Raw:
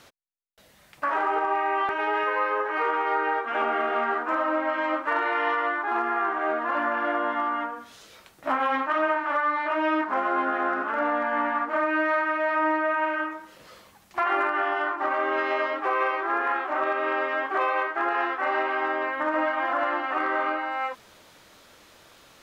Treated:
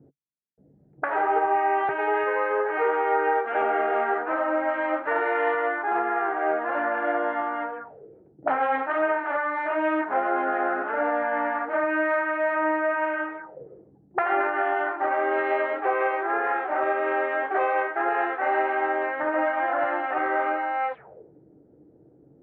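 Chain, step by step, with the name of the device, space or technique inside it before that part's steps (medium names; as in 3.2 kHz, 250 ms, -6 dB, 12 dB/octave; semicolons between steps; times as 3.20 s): envelope filter bass rig (touch-sensitive low-pass 240–4300 Hz up, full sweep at -27 dBFS; cabinet simulation 67–2100 Hz, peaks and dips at 140 Hz +10 dB, 240 Hz -7 dB, 450 Hz +8 dB, 770 Hz +6 dB, 1.1 kHz -9 dB)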